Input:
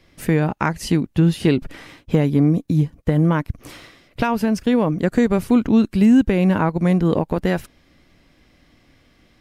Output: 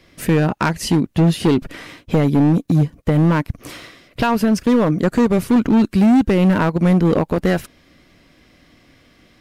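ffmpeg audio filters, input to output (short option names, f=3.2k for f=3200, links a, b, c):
-af "lowshelf=f=76:g=-7.5,bandreject=f=840:w=12,asoftclip=type=hard:threshold=-14.5dB,volume=5dB"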